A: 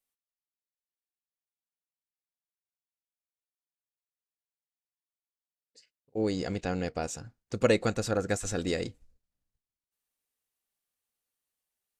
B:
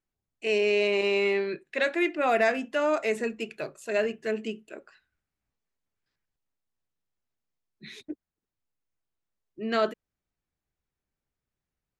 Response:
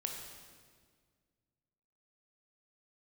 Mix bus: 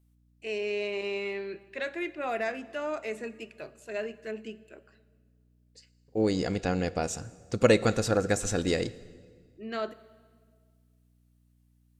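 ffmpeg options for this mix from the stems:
-filter_complex "[0:a]volume=1.5dB,asplit=2[a][b];[b]volume=-12dB[c];[1:a]aeval=exprs='val(0)+0.00158*(sin(2*PI*60*n/s)+sin(2*PI*2*60*n/s)/2+sin(2*PI*3*60*n/s)/3+sin(2*PI*4*60*n/s)/4+sin(2*PI*5*60*n/s)/5)':c=same,volume=-9.5dB,asplit=2[d][e];[e]volume=-12dB[f];[2:a]atrim=start_sample=2205[g];[c][f]amix=inputs=2:normalize=0[h];[h][g]afir=irnorm=-1:irlink=0[i];[a][d][i]amix=inputs=3:normalize=0"

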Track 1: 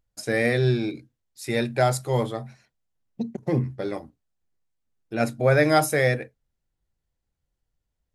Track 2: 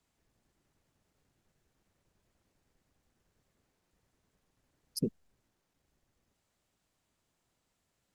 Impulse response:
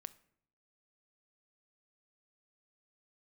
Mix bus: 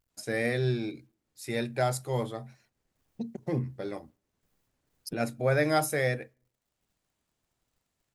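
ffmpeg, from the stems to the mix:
-filter_complex "[0:a]highshelf=f=10k:g=4.5,acrusher=bits=11:mix=0:aa=0.000001,volume=-8dB,asplit=3[a][b][c];[b]volume=-10.5dB[d];[1:a]adelay=100,volume=-2dB[e];[c]apad=whole_len=363781[f];[e][f]sidechaincompress=threshold=-43dB:ratio=8:attack=6.4:release=533[g];[2:a]atrim=start_sample=2205[h];[d][h]afir=irnorm=-1:irlink=0[i];[a][g][i]amix=inputs=3:normalize=0"

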